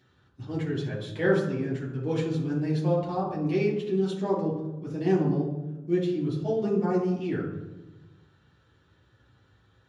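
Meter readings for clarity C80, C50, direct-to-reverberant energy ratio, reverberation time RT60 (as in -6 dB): 7.5 dB, 4.5 dB, -7.0 dB, 1.1 s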